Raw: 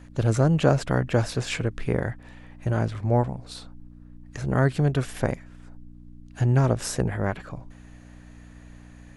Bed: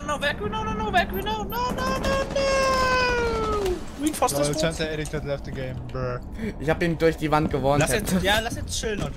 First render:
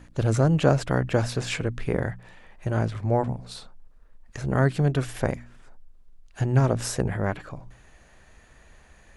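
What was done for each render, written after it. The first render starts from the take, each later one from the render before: de-hum 60 Hz, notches 5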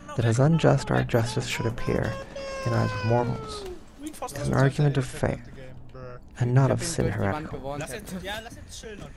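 add bed -12.5 dB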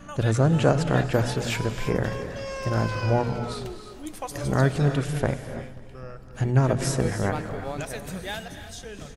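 feedback echo 0.268 s, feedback 56%, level -23 dB; non-linear reverb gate 0.36 s rising, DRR 9 dB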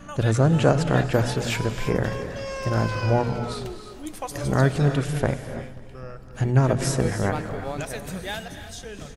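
gain +1.5 dB

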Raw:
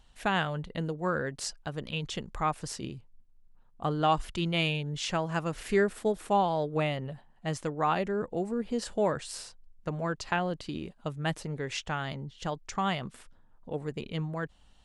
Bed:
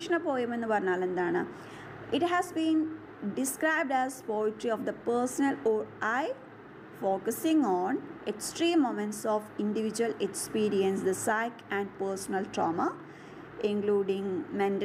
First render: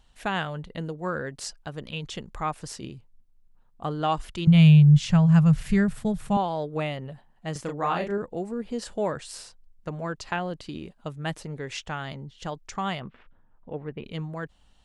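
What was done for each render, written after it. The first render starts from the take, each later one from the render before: 4.47–6.37 resonant low shelf 220 Hz +13.5 dB, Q 3; 7.52–8.18 doubler 35 ms -4 dB; 13–14.04 LPF 2900 Hz 24 dB/oct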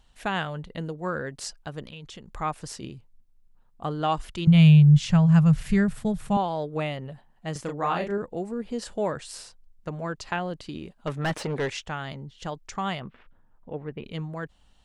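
1.87–2.35 compressor 2.5:1, threshold -42 dBFS; 11.07–11.7 overdrive pedal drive 26 dB, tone 2000 Hz, clips at -18 dBFS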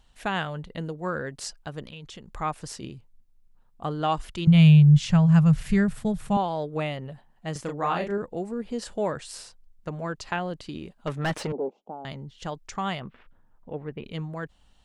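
11.52–12.05 elliptic band-pass 200–830 Hz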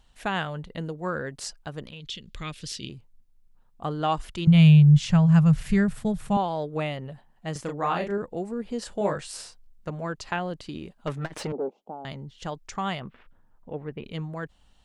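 2–2.89 EQ curve 190 Hz 0 dB, 550 Hz -6 dB, 780 Hz -19 dB, 3400 Hz +12 dB, 8200 Hz -1 dB; 8.99–9.9 doubler 20 ms -3 dB; 11.16–11.8 core saturation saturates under 250 Hz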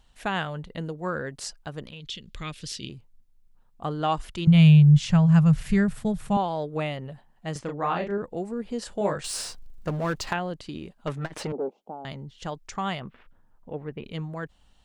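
7.59–8.24 air absorption 100 m; 9.24–10.33 power-law curve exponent 0.7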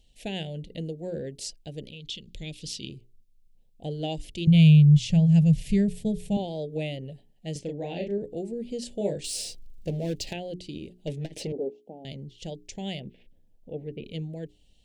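Chebyshev band-stop 520–2800 Hz, order 2; notches 60/120/180/240/300/360/420 Hz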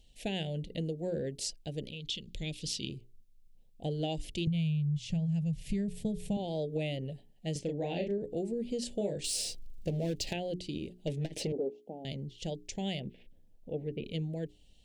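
compressor 12:1, threshold -29 dBFS, peak gain reduction 17 dB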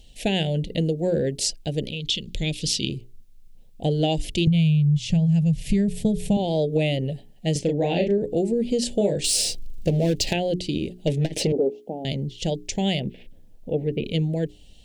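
gain +12 dB

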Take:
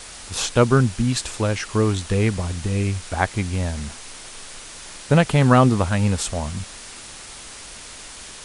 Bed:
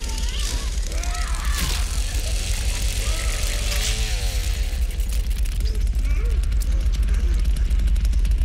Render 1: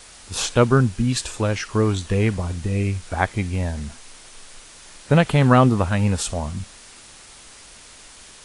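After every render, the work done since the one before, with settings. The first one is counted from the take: noise print and reduce 6 dB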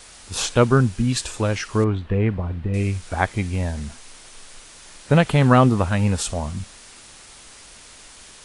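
1.84–2.74 air absorption 460 m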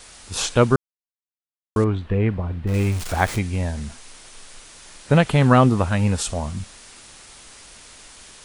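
0.76–1.76 mute; 2.67–3.39 zero-crossing step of -27 dBFS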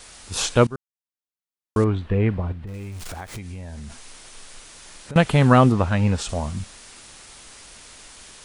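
0.67–1.95 fade in equal-power, from -21.5 dB; 2.52–5.16 compressor, threshold -32 dBFS; 5.72–6.29 air absorption 66 m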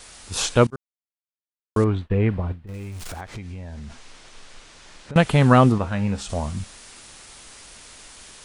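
0.7–2.69 expander -29 dBFS; 3.21–5.16 air absorption 81 m; 5.78–6.3 resonator 67 Hz, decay 0.28 s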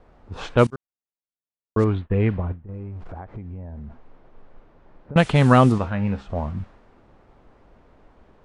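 low-pass opened by the level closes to 670 Hz, open at -11.5 dBFS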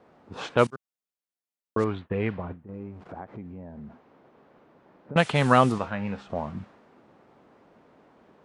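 Chebyshev high-pass 190 Hz, order 2; dynamic EQ 250 Hz, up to -7 dB, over -33 dBFS, Q 0.75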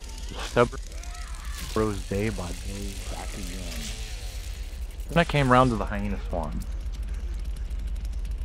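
add bed -12 dB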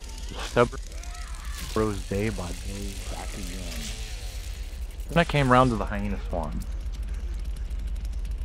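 nothing audible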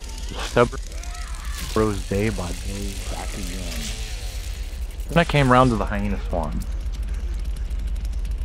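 gain +5 dB; limiter -2 dBFS, peak gain reduction 2.5 dB

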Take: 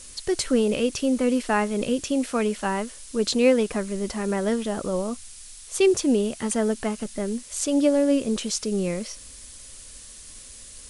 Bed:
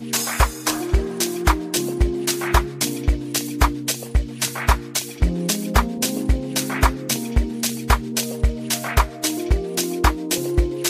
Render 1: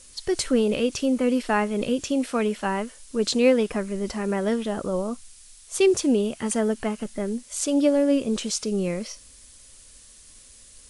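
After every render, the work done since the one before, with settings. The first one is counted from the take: noise print and reduce 6 dB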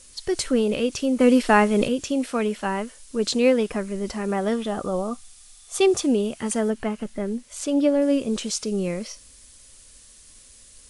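1.2–1.88 gain +6 dB; 4.27–6.05 small resonant body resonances 760/1200/3500 Hz, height 8 dB -> 11 dB; 6.7–8.02 tone controls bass +1 dB, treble -6 dB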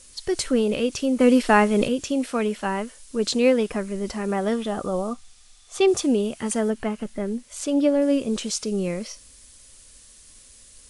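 5.13–5.88 air absorption 59 m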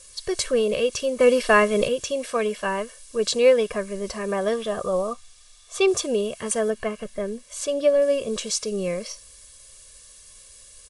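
low shelf 190 Hz -6 dB; comb 1.8 ms, depth 72%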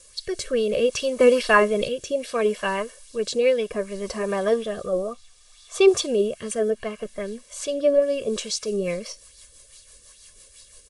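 rotary speaker horn 0.65 Hz, later 6 Hz, at 8.06; LFO bell 2.4 Hz 290–4500 Hz +8 dB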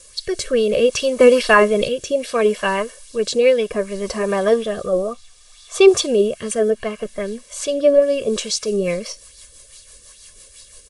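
gain +5.5 dB; limiter -1 dBFS, peak gain reduction 2.5 dB

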